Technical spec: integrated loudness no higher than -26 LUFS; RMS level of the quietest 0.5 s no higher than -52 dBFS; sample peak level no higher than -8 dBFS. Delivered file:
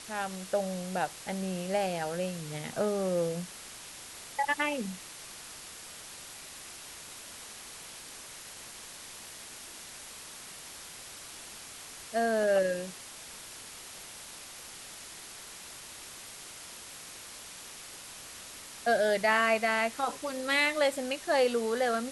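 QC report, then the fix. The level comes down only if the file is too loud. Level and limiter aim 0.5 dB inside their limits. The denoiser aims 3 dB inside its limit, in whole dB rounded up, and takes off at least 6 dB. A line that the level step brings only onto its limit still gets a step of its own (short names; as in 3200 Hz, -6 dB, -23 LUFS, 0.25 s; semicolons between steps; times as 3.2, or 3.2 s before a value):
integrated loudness -33.5 LUFS: OK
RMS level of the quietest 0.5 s -46 dBFS: fail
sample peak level -14.0 dBFS: OK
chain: denoiser 9 dB, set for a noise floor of -46 dBFS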